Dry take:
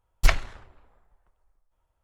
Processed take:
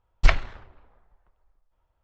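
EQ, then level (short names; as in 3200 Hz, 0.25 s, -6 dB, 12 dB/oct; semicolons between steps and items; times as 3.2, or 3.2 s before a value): LPF 6100 Hz 12 dB/oct; air absorption 83 m; +2.0 dB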